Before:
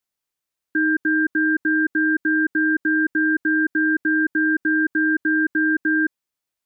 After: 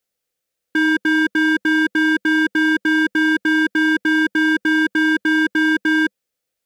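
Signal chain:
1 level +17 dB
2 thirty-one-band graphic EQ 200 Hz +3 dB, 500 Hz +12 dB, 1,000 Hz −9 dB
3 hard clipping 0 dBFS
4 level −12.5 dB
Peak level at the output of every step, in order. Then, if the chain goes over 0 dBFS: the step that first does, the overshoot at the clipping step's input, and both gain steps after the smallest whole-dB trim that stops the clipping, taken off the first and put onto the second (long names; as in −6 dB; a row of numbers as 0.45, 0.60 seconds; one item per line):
+4.5, +5.0, 0.0, −12.5 dBFS
step 1, 5.0 dB
step 1 +12 dB, step 4 −7.5 dB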